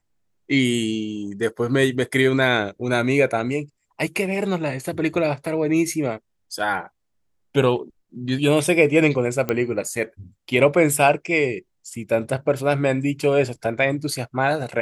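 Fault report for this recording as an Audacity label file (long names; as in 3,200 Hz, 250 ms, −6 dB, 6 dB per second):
9.490000	9.490000	click −10 dBFS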